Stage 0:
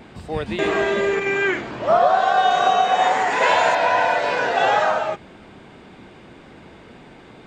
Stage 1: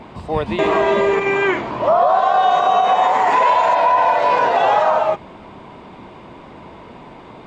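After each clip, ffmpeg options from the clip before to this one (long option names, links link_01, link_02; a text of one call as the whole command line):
ffmpeg -i in.wav -af "equalizer=frequency=630:width_type=o:width=0.33:gain=4,equalizer=frequency=1000:width_type=o:width=0.33:gain=11,equalizer=frequency=1600:width_type=o:width=0.33:gain=-5,alimiter=limit=-10dB:level=0:latency=1:release=86,lowpass=frequency=3800:poles=1,volume=4dB" out.wav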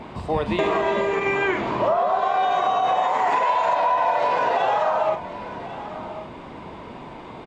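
ffmpeg -i in.wav -filter_complex "[0:a]acompressor=threshold=-18dB:ratio=6,asplit=2[link_01][link_02];[link_02]adelay=44,volume=-11.5dB[link_03];[link_01][link_03]amix=inputs=2:normalize=0,aecho=1:1:1094:0.2" out.wav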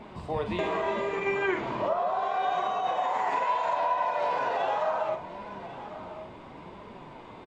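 ffmpeg -i in.wav -filter_complex "[0:a]flanger=delay=4.8:depth=6.5:regen=64:speed=0.73:shape=sinusoidal,asplit=2[link_01][link_02];[link_02]adelay=46,volume=-11dB[link_03];[link_01][link_03]amix=inputs=2:normalize=0,volume=-3.5dB" out.wav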